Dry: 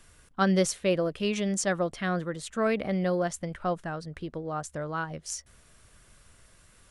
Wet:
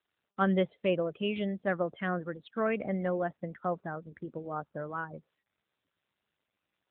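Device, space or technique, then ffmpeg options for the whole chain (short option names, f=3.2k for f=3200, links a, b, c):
mobile call with aggressive noise cancelling: -af "highpass=f=110:p=1,afftdn=nr=35:nf=-40,volume=-2dB" -ar 8000 -c:a libopencore_amrnb -b:a 10200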